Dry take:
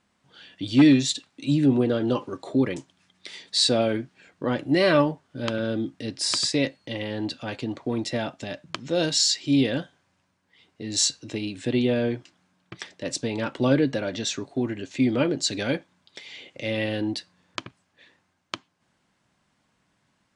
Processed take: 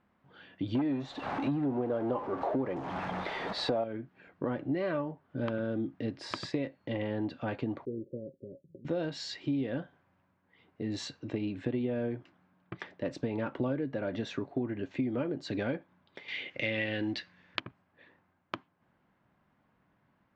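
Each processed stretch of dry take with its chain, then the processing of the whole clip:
0:00.75–0:03.84: converter with a step at zero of −31 dBFS + parametric band 760 Hz +12 dB 1.5 octaves + notch filter 7,400 Hz, Q 25
0:07.85–0:08.85: Chebyshev low-pass with heavy ripple 560 Hz, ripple 9 dB + parametric band 130 Hz −10.5 dB 1.8 octaves
0:16.28–0:17.60: flat-topped bell 3,400 Hz +12.5 dB 2.4 octaves + log-companded quantiser 6 bits
whole clip: low-pass filter 1,700 Hz 12 dB per octave; downward compressor 8 to 1, threshold −29 dBFS

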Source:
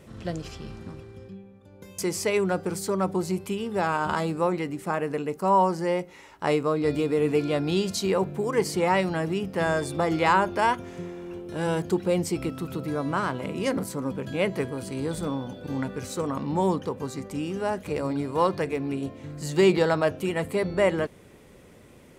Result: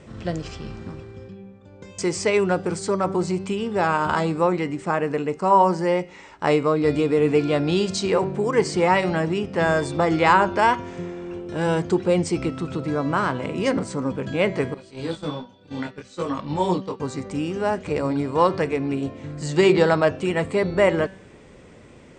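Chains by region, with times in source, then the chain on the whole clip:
0:14.74–0:17.00: noise gate −31 dBFS, range −15 dB + parametric band 3,700 Hz +9.5 dB 1.5 octaves + micro pitch shift up and down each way 20 cents
whole clip: Chebyshev low-pass filter 8,800 Hz, order 8; high-shelf EQ 5,700 Hz −4.5 dB; hum removal 191.6 Hz, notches 33; level +5.5 dB

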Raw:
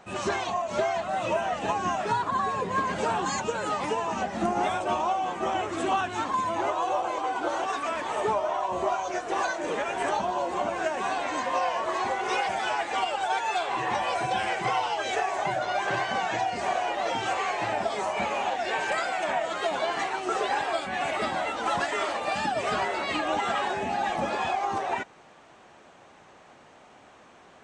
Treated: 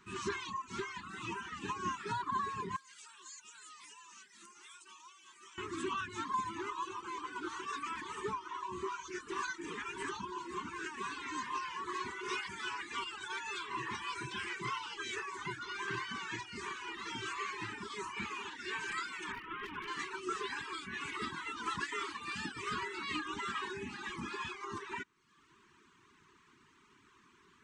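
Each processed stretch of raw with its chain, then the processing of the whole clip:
0:02.76–0:05.58: first difference + notch filter 470 Hz, Q 6.4 + downward compressor 3 to 1, threshold −41 dBFS
0:19.32–0:19.88: variable-slope delta modulation 16 kbit/s + hard clipping −23.5 dBFS
whole clip: elliptic band-stop filter 400–1,000 Hz, stop band 50 dB; reverb reduction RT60 0.79 s; level −6.5 dB

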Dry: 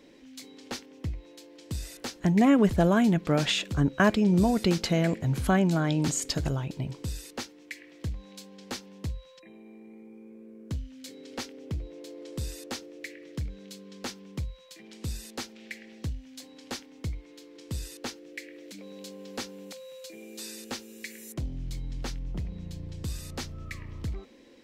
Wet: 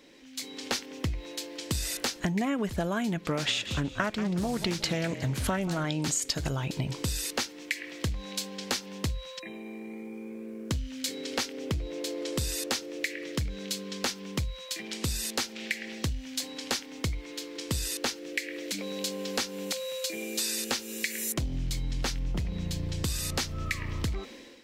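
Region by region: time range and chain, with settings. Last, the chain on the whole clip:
0:03.30–0:05.85: echo with shifted repeats 181 ms, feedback 36%, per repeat −33 Hz, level −15 dB + highs frequency-modulated by the lows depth 0.24 ms
whole clip: automatic gain control gain up to 11 dB; tilt shelving filter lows −4 dB, about 890 Hz; downward compressor 6 to 1, threshold −27 dBFS

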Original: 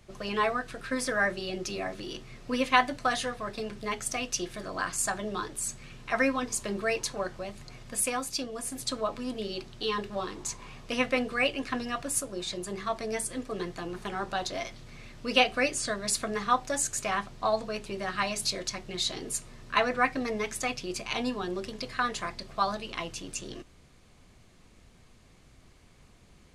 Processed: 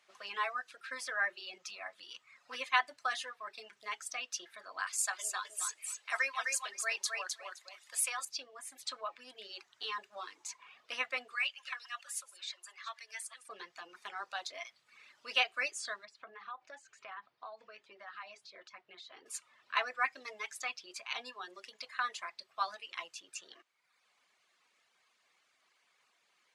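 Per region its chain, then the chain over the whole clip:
0:01.58–0:02.55: parametric band 370 Hz −8.5 dB 0.57 octaves + highs frequency-modulated by the lows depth 0.15 ms
0:04.87–0:08.25: high-pass filter 530 Hz + high-shelf EQ 4,200 Hz +8.5 dB + repeating echo 258 ms, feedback 19%, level −4 dB
0:11.35–0:13.49: delay that plays each chunk backwards 221 ms, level −11 dB + high-pass filter 1,300 Hz
0:16.05–0:19.26: downward compressor 4 to 1, threshold −32 dBFS + head-to-tape spacing loss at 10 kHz 25 dB
whole clip: low-pass filter 3,800 Hz 6 dB per octave; reverb reduction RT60 0.93 s; high-pass filter 1,100 Hz 12 dB per octave; level −3 dB

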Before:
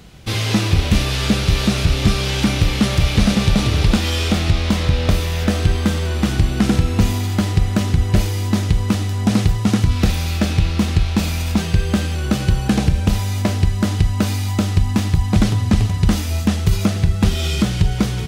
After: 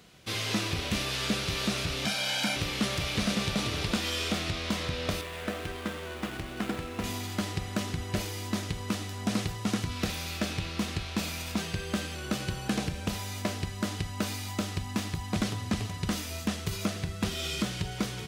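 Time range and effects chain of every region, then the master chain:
0:02.05–0:02.56: high-pass filter 240 Hz + comb filter 1.3 ms, depth 89%
0:05.21–0:07.04: running median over 9 samples + parametric band 120 Hz −7 dB 2.1 octaves
whole clip: high-pass filter 180 Hz 6 dB per octave; low-shelf EQ 340 Hz −4.5 dB; notch filter 830 Hz, Q 13; level −8 dB

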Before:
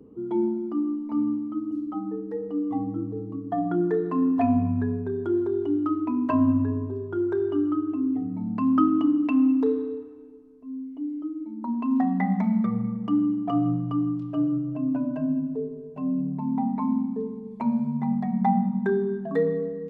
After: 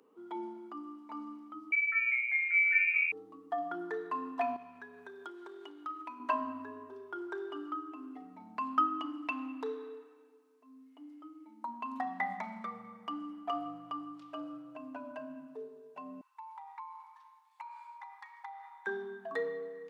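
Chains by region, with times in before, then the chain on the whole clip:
0:01.72–0:03.12: high-pass filter 53 Hz + parametric band 1,500 Hz −7 dB 0.48 octaves + voice inversion scrambler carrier 2,600 Hz
0:04.56–0:06.20: tilt shelving filter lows −4.5 dB, about 1,300 Hz + downward compressor 5 to 1, threshold −30 dBFS
0:16.21–0:18.87: linear-phase brick-wall high-pass 800 Hz + downward compressor 2.5 to 1, threshold −43 dBFS
whole clip: high-pass filter 1,100 Hz 12 dB per octave; dynamic equaliser 1,900 Hz, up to −3 dB, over −54 dBFS, Q 1; level +3 dB

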